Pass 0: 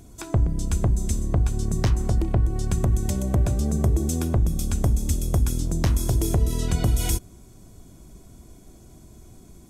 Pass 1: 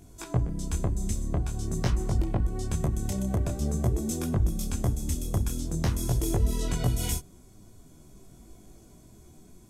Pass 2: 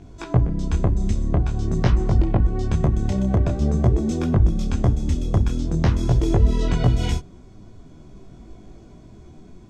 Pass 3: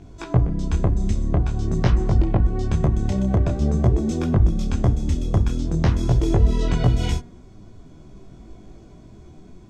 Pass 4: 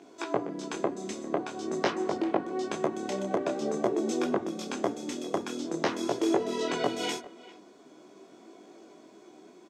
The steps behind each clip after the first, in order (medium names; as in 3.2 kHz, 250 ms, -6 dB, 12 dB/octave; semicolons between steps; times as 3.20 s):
peaking EQ 61 Hz -3.5 dB 1.3 oct; detune thickener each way 16 cents
distance through air 170 m; trim +8.5 dB
de-hum 238.4 Hz, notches 9
high-pass 300 Hz 24 dB/octave; speakerphone echo 400 ms, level -18 dB